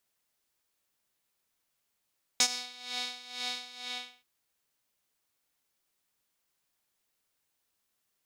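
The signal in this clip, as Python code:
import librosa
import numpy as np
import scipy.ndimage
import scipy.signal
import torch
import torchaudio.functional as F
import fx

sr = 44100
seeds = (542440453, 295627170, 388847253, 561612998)

y = fx.sub_patch_tremolo(sr, seeds[0], note=59, wave='saw', wave2='square', interval_st=19, detune_cents=16, level2_db=-9.0, sub_db=-26.0, noise_db=-30.0, kind='bandpass', cutoff_hz=3100.0, q=2.5, env_oct=1.0, env_decay_s=0.27, env_sustain_pct=40, attack_ms=1.6, decay_s=0.07, sustain_db=-21.5, release_s=0.45, note_s=1.39, lfo_hz=2.1, tremolo_db=15.0)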